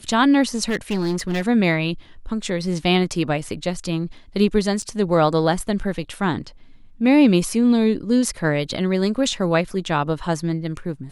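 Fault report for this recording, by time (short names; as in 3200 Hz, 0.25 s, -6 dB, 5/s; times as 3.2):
0.68–1.42 clipped -18 dBFS
4.82–4.83 gap 5.3 ms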